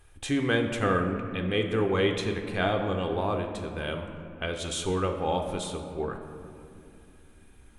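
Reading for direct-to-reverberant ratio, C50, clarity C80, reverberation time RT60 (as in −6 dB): 4.0 dB, 6.5 dB, 7.5 dB, 2.7 s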